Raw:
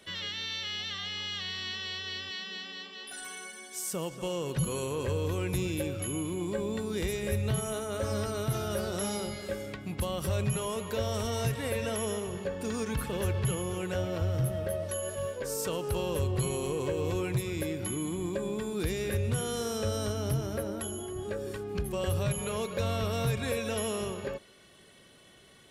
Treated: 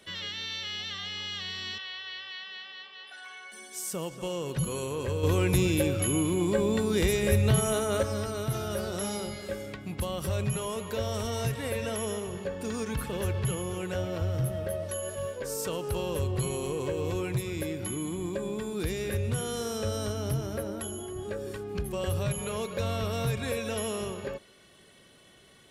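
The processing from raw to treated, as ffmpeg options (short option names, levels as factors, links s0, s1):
-filter_complex "[0:a]asettb=1/sr,asplit=3[s0][s1][s2];[s0]atrim=end=1.784[s3];[s1]atrim=start=1.78:end=3.52,asetpts=PTS-STARTPTS,afade=t=in:d=0.004:c=qsin,afade=t=out:st=1.736:d=0.004:c=qsin,acrossover=split=580 4300:gain=0.1 1 0.0708[s4][s5][s6];[s4][s5][s6]amix=inputs=3:normalize=0[s7];[s2]atrim=start=3.516[s8];[s3][s7]acrossfade=d=0.004:c1=hsin:c2=qsin[s9];[s9][s8]acrossfade=d=0.004:c1=qsin:c2=hsin,asettb=1/sr,asplit=3[s10][s11][s12];[s10]atrim=end=5.234[s13];[s11]atrim=start=5.23:end=8.03,asetpts=PTS-STARTPTS,afade=t=in:d=0.004:c=qsin,afade=t=out:st=2.796:d=0.004:c=qsin,acontrast=69[s14];[s12]atrim=start=8.026[s15];[s13][s14]acrossfade=d=0.004:c1=hsin:c2=qsin[s16];[s16][s15]acrossfade=d=0.004:c1=qsin:c2=hsin"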